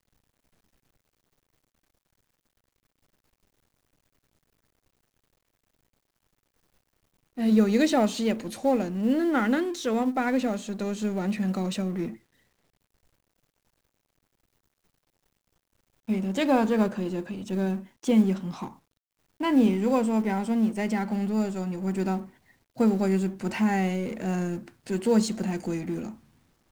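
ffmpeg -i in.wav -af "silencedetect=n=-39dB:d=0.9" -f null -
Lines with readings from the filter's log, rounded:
silence_start: 0.00
silence_end: 7.37 | silence_duration: 7.37
silence_start: 12.15
silence_end: 16.09 | silence_duration: 3.93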